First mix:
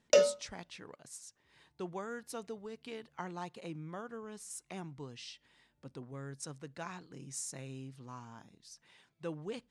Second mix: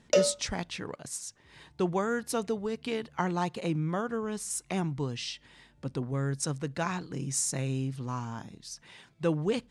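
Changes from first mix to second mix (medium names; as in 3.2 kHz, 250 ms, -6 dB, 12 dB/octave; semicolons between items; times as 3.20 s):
speech +11.0 dB; master: add bass shelf 180 Hz +6.5 dB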